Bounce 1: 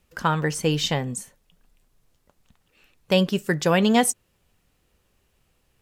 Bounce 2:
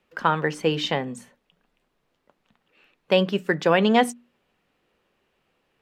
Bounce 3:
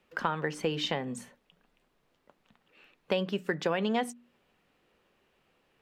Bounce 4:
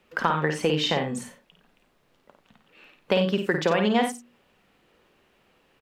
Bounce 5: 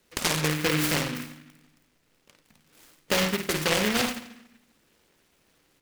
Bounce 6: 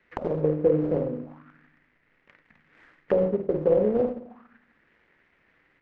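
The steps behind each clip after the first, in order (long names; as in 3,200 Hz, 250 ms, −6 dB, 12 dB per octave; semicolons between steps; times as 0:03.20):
three-way crossover with the lows and the highs turned down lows −17 dB, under 180 Hz, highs −16 dB, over 3,800 Hz; mains-hum notches 60/120/180/240/300 Hz; level +2 dB
downward compressor 3 to 1, threshold −29 dBFS, peak gain reduction 12.5 dB
loudspeakers that aren't time-aligned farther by 18 metres −6 dB, 31 metres −12 dB; level +6 dB
feedback delay network reverb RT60 0.74 s, low-frequency decay 1.55×, high-frequency decay 0.95×, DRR 9 dB; short delay modulated by noise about 1,900 Hz, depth 0.3 ms; level −3 dB
envelope-controlled low-pass 500–2,000 Hz down, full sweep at −29 dBFS; level −1.5 dB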